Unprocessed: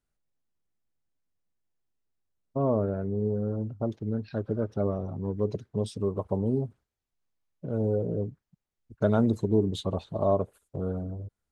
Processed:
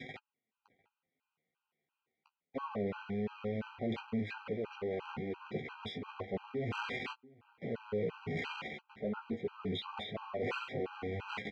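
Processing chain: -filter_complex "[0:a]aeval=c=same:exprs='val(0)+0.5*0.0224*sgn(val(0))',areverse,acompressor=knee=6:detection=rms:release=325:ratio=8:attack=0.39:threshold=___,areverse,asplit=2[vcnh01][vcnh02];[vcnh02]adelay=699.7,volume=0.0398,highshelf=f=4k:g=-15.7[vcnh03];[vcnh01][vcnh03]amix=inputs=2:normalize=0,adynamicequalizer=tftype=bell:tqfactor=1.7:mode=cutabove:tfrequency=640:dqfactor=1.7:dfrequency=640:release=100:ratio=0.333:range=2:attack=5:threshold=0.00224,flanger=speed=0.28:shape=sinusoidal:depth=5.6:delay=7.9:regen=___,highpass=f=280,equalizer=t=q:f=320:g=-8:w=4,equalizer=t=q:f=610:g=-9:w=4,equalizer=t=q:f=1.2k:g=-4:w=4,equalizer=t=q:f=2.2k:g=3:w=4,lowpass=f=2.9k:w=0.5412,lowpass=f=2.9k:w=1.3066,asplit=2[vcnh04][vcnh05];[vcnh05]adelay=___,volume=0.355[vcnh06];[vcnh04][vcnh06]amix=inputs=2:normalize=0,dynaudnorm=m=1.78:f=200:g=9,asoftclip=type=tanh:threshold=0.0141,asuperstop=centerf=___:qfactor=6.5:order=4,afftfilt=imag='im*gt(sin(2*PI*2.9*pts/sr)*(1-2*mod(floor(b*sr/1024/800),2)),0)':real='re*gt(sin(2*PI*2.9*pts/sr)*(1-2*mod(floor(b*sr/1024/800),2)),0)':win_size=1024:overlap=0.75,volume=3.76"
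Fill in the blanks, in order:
0.0224, 25, 19, 1700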